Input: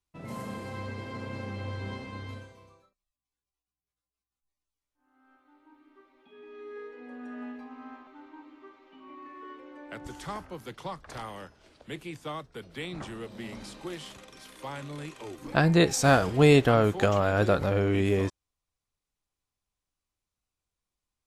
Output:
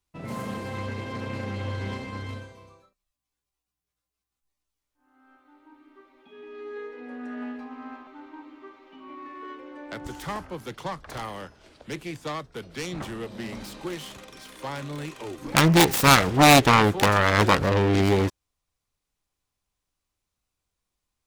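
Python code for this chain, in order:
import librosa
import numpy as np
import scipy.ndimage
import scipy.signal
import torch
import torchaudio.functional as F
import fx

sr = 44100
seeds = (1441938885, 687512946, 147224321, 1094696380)

y = fx.self_delay(x, sr, depth_ms=0.93)
y = y * librosa.db_to_amplitude(5.0)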